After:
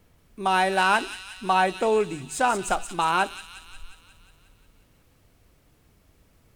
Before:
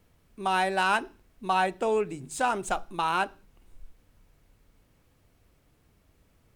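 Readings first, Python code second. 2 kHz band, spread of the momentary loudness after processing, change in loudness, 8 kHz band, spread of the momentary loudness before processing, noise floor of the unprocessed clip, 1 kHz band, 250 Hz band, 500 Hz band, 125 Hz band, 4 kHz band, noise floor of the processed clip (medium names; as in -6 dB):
+4.0 dB, 11 LU, +4.0 dB, +6.0 dB, 9 LU, -66 dBFS, +4.0 dB, +4.0 dB, +4.0 dB, +4.0 dB, +5.0 dB, -61 dBFS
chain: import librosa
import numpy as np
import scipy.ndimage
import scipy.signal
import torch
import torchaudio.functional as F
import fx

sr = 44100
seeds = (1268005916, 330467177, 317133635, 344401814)

y = fx.echo_wet_highpass(x, sr, ms=179, feedback_pct=63, hz=3200.0, wet_db=-5)
y = F.gain(torch.from_numpy(y), 4.0).numpy()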